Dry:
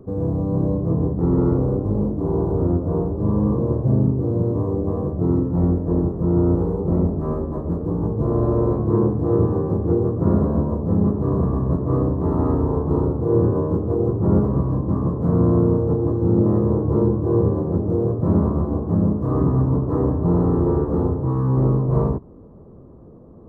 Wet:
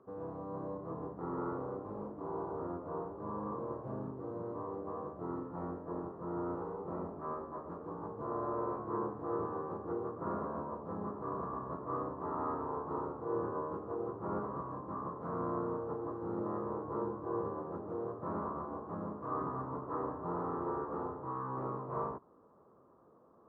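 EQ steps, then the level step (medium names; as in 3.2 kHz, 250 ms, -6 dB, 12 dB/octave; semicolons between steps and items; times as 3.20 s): band-pass filter 1.3 kHz, Q 1.9; -2.5 dB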